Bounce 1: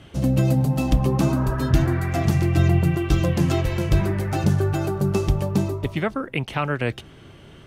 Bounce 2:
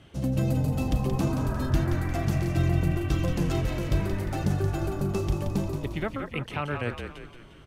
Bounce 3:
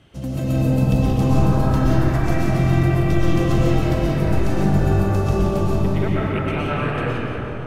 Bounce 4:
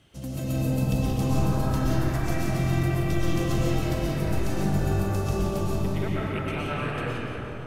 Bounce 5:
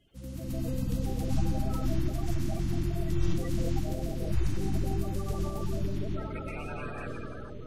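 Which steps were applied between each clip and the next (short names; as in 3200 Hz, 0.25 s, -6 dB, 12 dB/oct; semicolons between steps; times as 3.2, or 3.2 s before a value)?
frequency-shifting echo 0.176 s, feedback 48%, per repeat -43 Hz, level -6.5 dB; gain -7 dB
reverb RT60 3.5 s, pre-delay 80 ms, DRR -7.5 dB
high shelf 4000 Hz +10 dB; gain -7.5 dB
bin magnitudes rounded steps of 30 dB; low shelf 75 Hz +11 dB; gain -9 dB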